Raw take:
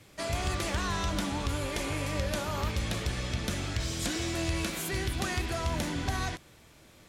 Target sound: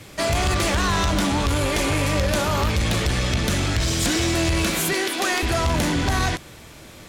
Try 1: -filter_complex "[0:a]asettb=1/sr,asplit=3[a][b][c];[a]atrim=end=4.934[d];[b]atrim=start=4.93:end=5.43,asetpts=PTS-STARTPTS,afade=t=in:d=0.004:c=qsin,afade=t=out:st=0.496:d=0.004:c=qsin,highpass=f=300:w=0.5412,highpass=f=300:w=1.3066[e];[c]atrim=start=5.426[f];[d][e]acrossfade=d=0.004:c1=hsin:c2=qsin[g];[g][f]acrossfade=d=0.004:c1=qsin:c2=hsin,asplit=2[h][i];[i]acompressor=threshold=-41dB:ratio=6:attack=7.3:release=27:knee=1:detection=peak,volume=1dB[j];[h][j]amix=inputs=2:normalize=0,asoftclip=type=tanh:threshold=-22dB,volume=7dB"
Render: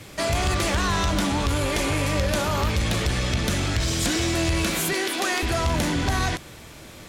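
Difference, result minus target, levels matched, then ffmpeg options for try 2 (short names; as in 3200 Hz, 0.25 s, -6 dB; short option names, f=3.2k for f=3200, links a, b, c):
compressor: peak gain reduction +8.5 dB
-filter_complex "[0:a]asettb=1/sr,asplit=3[a][b][c];[a]atrim=end=4.934[d];[b]atrim=start=4.93:end=5.43,asetpts=PTS-STARTPTS,afade=t=in:d=0.004:c=qsin,afade=t=out:st=0.496:d=0.004:c=qsin,highpass=f=300:w=0.5412,highpass=f=300:w=1.3066[e];[c]atrim=start=5.426[f];[d][e]acrossfade=d=0.004:c1=hsin:c2=qsin[g];[g][f]acrossfade=d=0.004:c1=qsin:c2=hsin,asplit=2[h][i];[i]acompressor=threshold=-31dB:ratio=6:attack=7.3:release=27:knee=1:detection=peak,volume=1dB[j];[h][j]amix=inputs=2:normalize=0,asoftclip=type=tanh:threshold=-22dB,volume=7dB"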